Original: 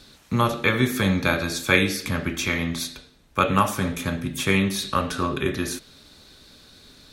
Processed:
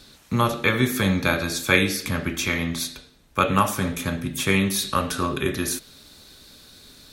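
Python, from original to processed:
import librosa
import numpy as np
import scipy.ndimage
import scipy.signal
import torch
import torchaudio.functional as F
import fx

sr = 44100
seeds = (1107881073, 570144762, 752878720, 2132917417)

y = fx.high_shelf(x, sr, hz=8600.0, db=fx.steps((0.0, 5.0), (4.59, 11.5)))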